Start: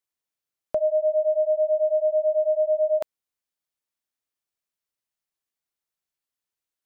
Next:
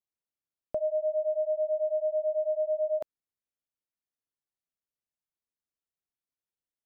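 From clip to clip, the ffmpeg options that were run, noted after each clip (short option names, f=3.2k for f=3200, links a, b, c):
-af "tiltshelf=f=780:g=5.5,volume=-8dB"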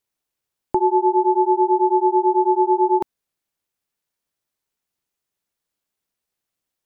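-af "acontrast=41,aeval=exprs='val(0)*sin(2*PI*250*n/s)':c=same,volume=9dB"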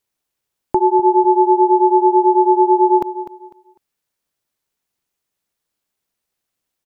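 -af "aecho=1:1:250|500|750:0.224|0.0582|0.0151,volume=3.5dB"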